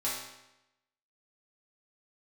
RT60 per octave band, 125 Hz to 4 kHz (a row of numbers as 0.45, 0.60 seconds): 0.95, 0.90, 0.90, 0.90, 0.90, 0.80 seconds